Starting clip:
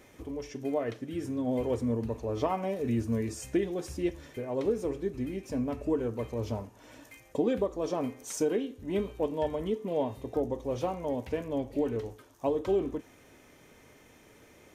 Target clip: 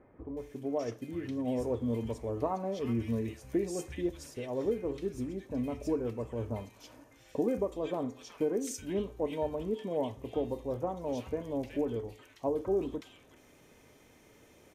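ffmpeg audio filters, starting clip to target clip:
ffmpeg -i in.wav -filter_complex "[0:a]acrossover=split=1600[link_01][link_02];[link_02]adelay=370[link_03];[link_01][link_03]amix=inputs=2:normalize=0,volume=-2.5dB" out.wav

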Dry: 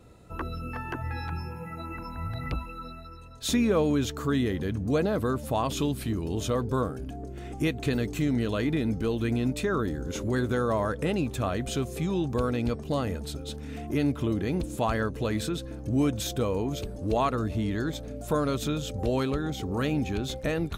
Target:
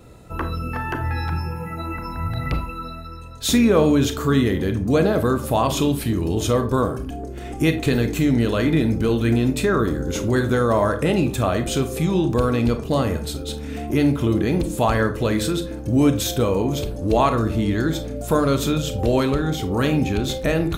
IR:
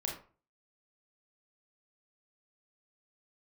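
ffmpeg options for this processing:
-filter_complex "[0:a]asplit=2[link_01][link_02];[1:a]atrim=start_sample=2205,highshelf=frequency=11000:gain=11[link_03];[link_02][link_03]afir=irnorm=-1:irlink=0,volume=-3.5dB[link_04];[link_01][link_04]amix=inputs=2:normalize=0,volume=3.5dB"

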